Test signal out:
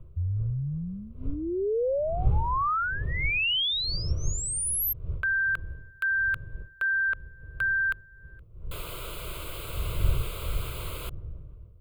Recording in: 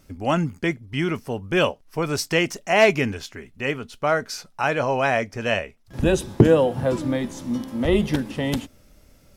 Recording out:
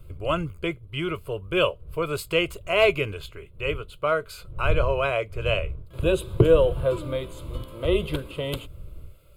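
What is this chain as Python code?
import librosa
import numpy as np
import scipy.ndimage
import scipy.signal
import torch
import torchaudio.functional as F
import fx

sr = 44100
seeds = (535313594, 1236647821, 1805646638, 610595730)

y = fx.dmg_wind(x, sr, seeds[0], corner_hz=91.0, level_db=-32.0)
y = fx.fixed_phaser(y, sr, hz=1200.0, stages=8)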